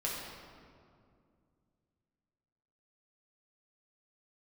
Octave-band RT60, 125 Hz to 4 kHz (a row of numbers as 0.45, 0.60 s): 3.3, 3.1, 2.5, 2.1, 1.6, 1.3 s